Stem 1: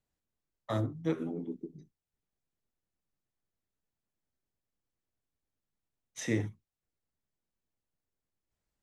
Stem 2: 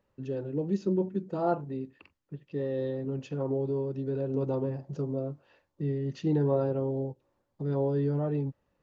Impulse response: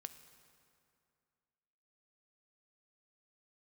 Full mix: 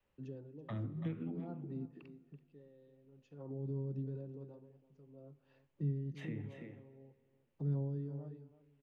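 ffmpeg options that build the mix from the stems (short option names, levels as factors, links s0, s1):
-filter_complex "[0:a]highshelf=f=4000:t=q:w=3:g=-13.5,acrossover=split=400|1400[s0][s1][s2];[s0]acompressor=threshold=0.00708:ratio=4[s3];[s1]acompressor=threshold=0.00501:ratio=4[s4];[s2]acompressor=threshold=0.00316:ratio=4[s5];[s3][s4][s5]amix=inputs=3:normalize=0,volume=0.944,asplit=3[s6][s7][s8];[s7]volume=0.631[s9];[s8]volume=0.2[s10];[1:a]aeval=exprs='val(0)*pow(10,-26*(0.5-0.5*cos(2*PI*0.52*n/s))/20)':c=same,volume=0.355,asplit=4[s11][s12][s13][s14];[s12]volume=0.422[s15];[s13]volume=0.178[s16];[s14]apad=whole_len=389214[s17];[s6][s17]sidechaincompress=threshold=0.00158:ratio=8:attack=16:release=560[s18];[2:a]atrim=start_sample=2205[s19];[s9][s15]amix=inputs=2:normalize=0[s20];[s20][s19]afir=irnorm=-1:irlink=0[s21];[s10][s16]amix=inputs=2:normalize=0,aecho=0:1:332:1[s22];[s18][s11][s21][s22]amix=inputs=4:normalize=0,adynamicequalizer=threshold=0.002:dfrequency=190:dqfactor=0.84:tfrequency=190:tqfactor=0.84:attack=5:release=100:ratio=0.375:range=4:mode=boostabove:tftype=bell,acrossover=split=200[s23][s24];[s24]acompressor=threshold=0.00447:ratio=4[s25];[s23][s25]amix=inputs=2:normalize=0"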